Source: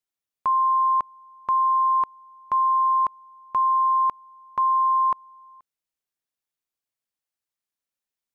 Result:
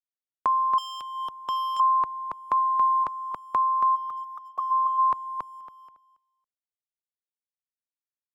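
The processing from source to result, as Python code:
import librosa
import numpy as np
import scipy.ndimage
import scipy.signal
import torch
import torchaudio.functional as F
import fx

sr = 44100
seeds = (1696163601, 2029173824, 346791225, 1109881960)

p1 = fx.over_compress(x, sr, threshold_db=-27.0, ratio=-1.0)
p2 = x + (p1 * 10.0 ** (-1.0 / 20.0))
p3 = fx.auto_wah(p2, sr, base_hz=490.0, top_hz=1200.0, q=9.2, full_db=-18.0, direction='up', at=(3.95, 4.7), fade=0.02)
p4 = np.sign(p3) * np.maximum(np.abs(p3) - 10.0 ** (-57.5 / 20.0), 0.0)
p5 = fx.highpass(p4, sr, hz=380.0, slope=12, at=(2.57, 3.04))
p6 = p5 + fx.echo_feedback(p5, sr, ms=278, feedback_pct=19, wet_db=-4.5, dry=0)
p7 = fx.clip_hard(p6, sr, threshold_db=-22.0, at=(0.78, 1.8))
p8 = fx.dereverb_blind(p7, sr, rt60_s=1.4)
p9 = fx.band_squash(p8, sr, depth_pct=40)
y = p9 * 10.0 ** (-4.0 / 20.0)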